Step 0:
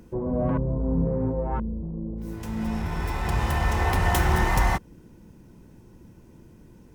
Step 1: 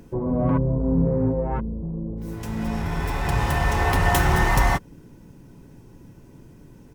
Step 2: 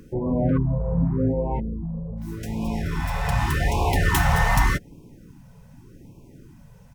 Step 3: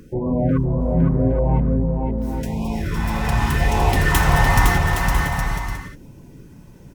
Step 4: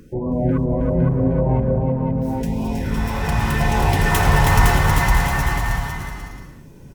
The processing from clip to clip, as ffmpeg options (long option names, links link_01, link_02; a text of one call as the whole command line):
ffmpeg -i in.wav -af "aecho=1:1:7.2:0.32,volume=3dB" out.wav
ffmpeg -i in.wav -af "afftfilt=real='re*(1-between(b*sr/1024,290*pow(1600/290,0.5+0.5*sin(2*PI*0.85*pts/sr))/1.41,290*pow(1600/290,0.5+0.5*sin(2*PI*0.85*pts/sr))*1.41))':imag='im*(1-between(b*sr/1024,290*pow(1600/290,0.5+0.5*sin(2*PI*0.85*pts/sr))/1.41,290*pow(1600/290,0.5+0.5*sin(2*PI*0.85*pts/sr))*1.41))':win_size=1024:overlap=0.75" out.wav
ffmpeg -i in.wav -af "aecho=1:1:510|816|999.6|1110|1176:0.631|0.398|0.251|0.158|0.1,volume=2.5dB" out.wav
ffmpeg -i in.wav -af "aecho=1:1:320|512|627.2|696.3|737.8:0.631|0.398|0.251|0.158|0.1,volume=-1dB" out.wav